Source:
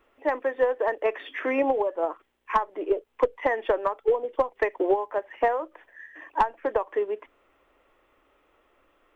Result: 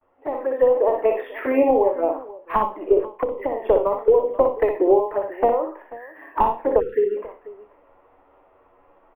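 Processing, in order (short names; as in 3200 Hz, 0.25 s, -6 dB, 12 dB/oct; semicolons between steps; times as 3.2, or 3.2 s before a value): spectral trails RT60 0.34 s; band noise 450–1100 Hz -63 dBFS; gate with hold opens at -53 dBFS; envelope flanger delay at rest 11.4 ms, full sweep at -21.5 dBFS; air absorption 390 m; tapped delay 60/488 ms -5.5/-19 dB; AGC gain up to 8.5 dB; high shelf 3000 Hz -11.5 dB; 3.12–3.65 compressor 6:1, threshold -21 dBFS, peak gain reduction 11 dB; 6.8–7.17 spectral delete 530–1300 Hz; decimation joined by straight lines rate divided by 3×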